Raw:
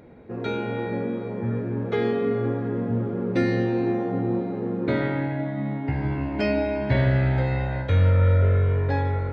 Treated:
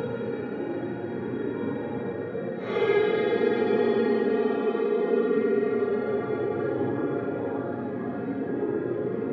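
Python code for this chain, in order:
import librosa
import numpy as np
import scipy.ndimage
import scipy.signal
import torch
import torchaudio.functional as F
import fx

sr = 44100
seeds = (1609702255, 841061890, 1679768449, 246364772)

y = fx.air_absorb(x, sr, metres=68.0)
y = y + 10.0 ** (-8.5 / 20.0) * np.pad(y, (int(1001 * sr / 1000.0), 0))[:len(y)]
y = fx.paulstretch(y, sr, seeds[0], factor=7.5, window_s=0.05, from_s=1.56)
y = scipy.signal.sosfilt(scipy.signal.butter(2, 250.0, 'highpass', fs=sr, output='sos'), y)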